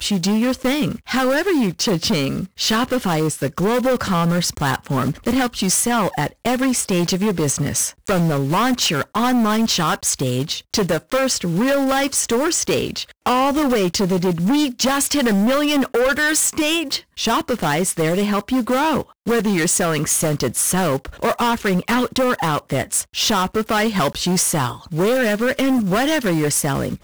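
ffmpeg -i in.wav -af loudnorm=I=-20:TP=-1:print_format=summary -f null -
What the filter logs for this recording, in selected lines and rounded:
Input Integrated:    -18.7 LUFS
Input True Peak:      -9.9 dBTP
Input LRA:             1.2 LU
Input Threshold:     -28.7 LUFS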